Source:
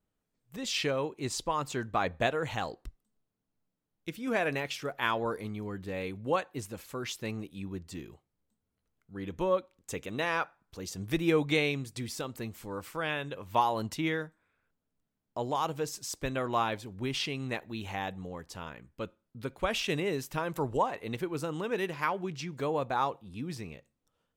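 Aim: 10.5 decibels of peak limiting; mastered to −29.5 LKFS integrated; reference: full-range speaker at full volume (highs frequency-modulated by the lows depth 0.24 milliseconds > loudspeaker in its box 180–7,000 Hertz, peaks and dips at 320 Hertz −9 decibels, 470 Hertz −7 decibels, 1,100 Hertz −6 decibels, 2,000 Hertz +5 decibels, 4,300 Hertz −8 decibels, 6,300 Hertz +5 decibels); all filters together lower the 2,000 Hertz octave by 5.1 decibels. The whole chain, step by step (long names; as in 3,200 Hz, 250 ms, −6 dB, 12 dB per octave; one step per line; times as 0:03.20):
parametric band 2,000 Hz −8.5 dB
brickwall limiter −25 dBFS
highs frequency-modulated by the lows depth 0.24 ms
loudspeaker in its box 180–7,000 Hz, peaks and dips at 320 Hz −9 dB, 470 Hz −7 dB, 1,100 Hz −6 dB, 2,000 Hz +5 dB, 4,300 Hz −8 dB, 6,300 Hz +5 dB
level +11 dB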